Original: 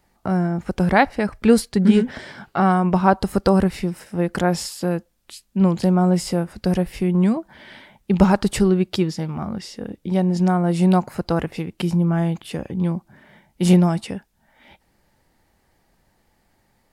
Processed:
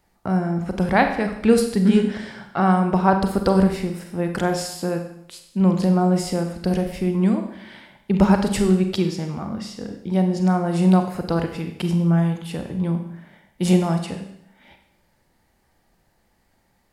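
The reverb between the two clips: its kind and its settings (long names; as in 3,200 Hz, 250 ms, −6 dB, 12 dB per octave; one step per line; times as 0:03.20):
four-comb reverb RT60 0.76 s, combs from 32 ms, DRR 5.5 dB
level −2 dB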